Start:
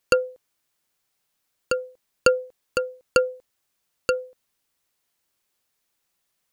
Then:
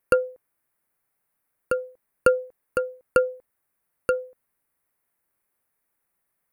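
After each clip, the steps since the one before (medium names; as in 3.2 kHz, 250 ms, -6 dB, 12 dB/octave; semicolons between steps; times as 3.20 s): high-order bell 4.6 kHz -15 dB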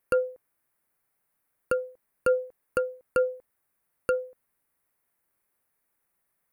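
peak limiter -14 dBFS, peak gain reduction 9 dB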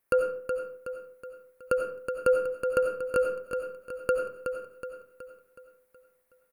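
feedback delay 371 ms, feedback 48%, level -7 dB; reverberation RT60 0.50 s, pre-delay 49 ms, DRR 5 dB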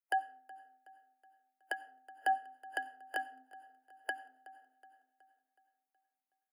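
spectral noise reduction 14 dB; dynamic bell 2.7 kHz, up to +4 dB, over -46 dBFS, Q 0.83; frequency shift +260 Hz; trim -8 dB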